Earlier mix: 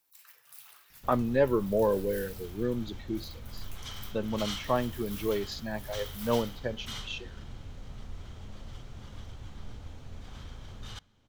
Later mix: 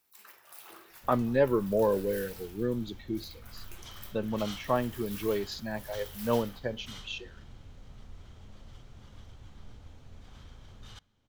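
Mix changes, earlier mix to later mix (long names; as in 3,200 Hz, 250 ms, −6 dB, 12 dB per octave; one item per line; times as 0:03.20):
first sound: remove guitar amp tone stack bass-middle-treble 10-0-10
second sound −6.0 dB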